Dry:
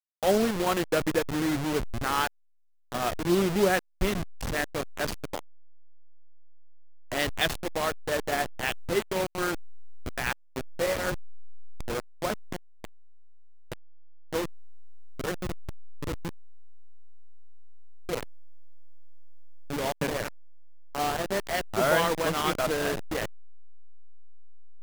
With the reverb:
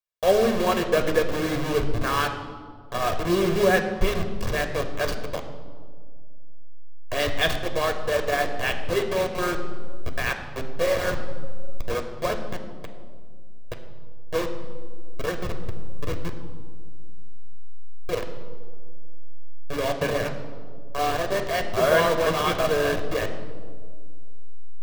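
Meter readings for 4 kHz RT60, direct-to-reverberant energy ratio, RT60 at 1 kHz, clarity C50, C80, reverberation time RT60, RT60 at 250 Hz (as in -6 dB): 1.1 s, 5.0 dB, 1.6 s, 9.0 dB, 10.0 dB, 1.9 s, 2.5 s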